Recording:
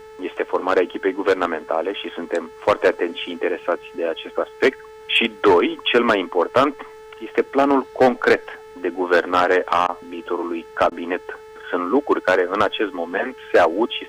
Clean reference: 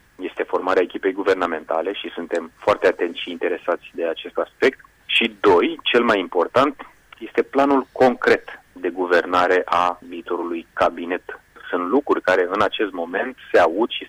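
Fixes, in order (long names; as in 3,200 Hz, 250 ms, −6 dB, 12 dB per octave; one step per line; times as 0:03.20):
hum removal 435.7 Hz, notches 22
repair the gap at 0:09.87/0:10.90, 15 ms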